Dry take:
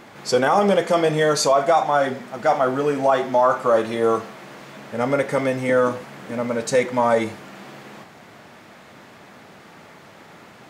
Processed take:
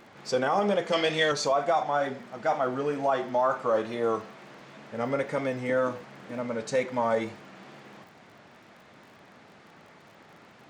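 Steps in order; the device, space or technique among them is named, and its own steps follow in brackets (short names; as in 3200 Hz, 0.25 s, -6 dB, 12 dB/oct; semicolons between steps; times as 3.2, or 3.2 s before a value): 0.92–1.32 weighting filter D; lo-fi chain (LPF 6700 Hz 12 dB/oct; wow and flutter; crackle 39/s -39 dBFS); gain -8 dB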